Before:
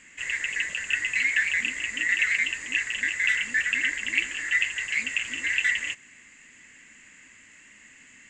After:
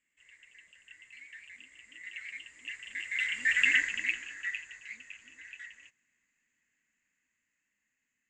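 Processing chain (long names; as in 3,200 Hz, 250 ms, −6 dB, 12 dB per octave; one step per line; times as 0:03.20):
source passing by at 0:03.68, 9 m/s, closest 1.6 metres
dynamic equaliser 2,300 Hz, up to +5 dB, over −42 dBFS, Q 0.84
level −3.5 dB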